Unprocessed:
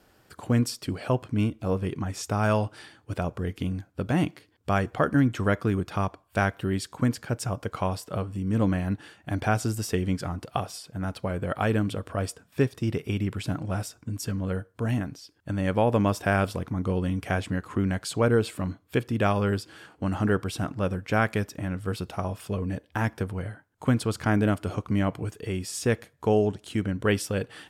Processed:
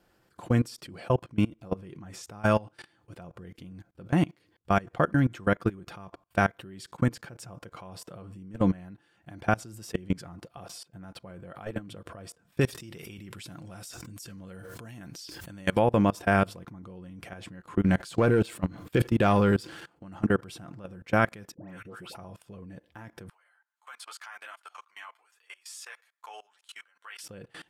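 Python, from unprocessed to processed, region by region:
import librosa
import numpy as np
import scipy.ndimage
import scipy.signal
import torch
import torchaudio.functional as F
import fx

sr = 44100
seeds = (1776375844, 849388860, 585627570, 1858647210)

y = fx.chain(x, sr, fx.high_shelf(hz=2500.0, db=12.0),
    fx.pre_swell(db_per_s=68.0), at=(12.61, 15.79))
y = fx.chain(y, sr, fx.leveller(passes=1),
    fx.sustainer(db_per_s=94.0), at=(17.85, 20.03))
y = fx.chain(y, sr, fx.highpass(hz=280.0, slope=6),
    fx.dispersion(late='highs', ms=149.0, hz=1600.0), at=(21.54, 22.15))
y = fx.chain(y, sr, fx.highpass(hz=960.0, slope=24),
    fx.ensemble(), at=(23.29, 27.24))
y = fx.high_shelf(y, sr, hz=3800.0, db=-3.0)
y = y + 0.35 * np.pad(y, (int(5.8 * sr / 1000.0), 0))[:len(y)]
y = fx.level_steps(y, sr, step_db=23)
y = y * 10.0 ** (2.0 / 20.0)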